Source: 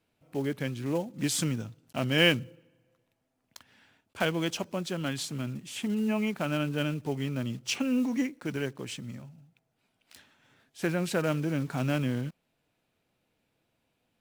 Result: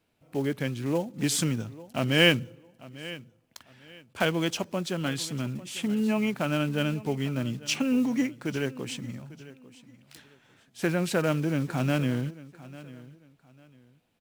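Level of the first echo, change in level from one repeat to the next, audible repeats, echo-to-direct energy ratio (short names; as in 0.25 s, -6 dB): -18.5 dB, -11.5 dB, 2, -18.0 dB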